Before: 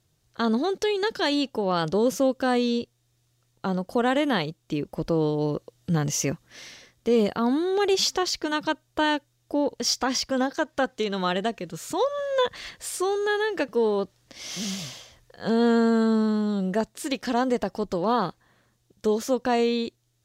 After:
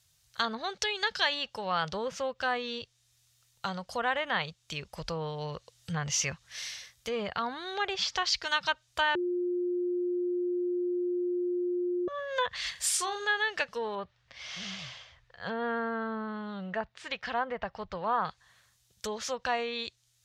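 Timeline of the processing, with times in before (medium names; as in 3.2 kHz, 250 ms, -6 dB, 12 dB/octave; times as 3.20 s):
9.15–12.08 s: bleep 355 Hz -8.5 dBFS
12.71–13.25 s: doubling 44 ms -8 dB
13.95–18.25 s: low-pass 2.2 kHz
whole clip: low-pass that closes with the level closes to 1.9 kHz, closed at -18.5 dBFS; high-pass 50 Hz; amplifier tone stack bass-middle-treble 10-0-10; trim +7 dB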